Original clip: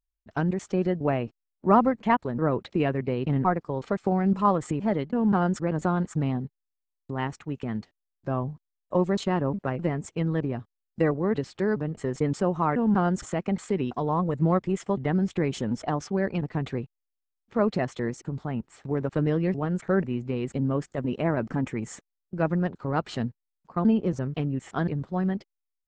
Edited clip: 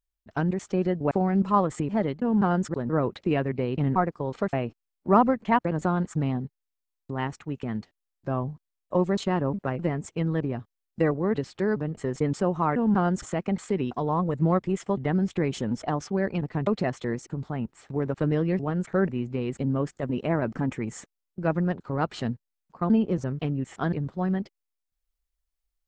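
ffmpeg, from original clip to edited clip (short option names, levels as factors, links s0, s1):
-filter_complex "[0:a]asplit=6[s0][s1][s2][s3][s4][s5];[s0]atrim=end=1.112[s6];[s1]atrim=start=4.018:end=5.652[s7];[s2]atrim=start=2.228:end=4.022[s8];[s3]atrim=start=1.108:end=2.232[s9];[s4]atrim=start=5.648:end=16.672[s10];[s5]atrim=start=17.618[s11];[s6][s7]acrossfade=d=0.004:c1=hsin:c2=hsin[s12];[s12][s8]acrossfade=d=0.004:c1=hsin:c2=hsin[s13];[s13][s9]acrossfade=d=0.004:c1=hsin:c2=hsin[s14];[s14][s10]acrossfade=d=0.004:c1=hsin:c2=hsin[s15];[s15][s11]acrossfade=d=0.004:c1=hsin:c2=hsin"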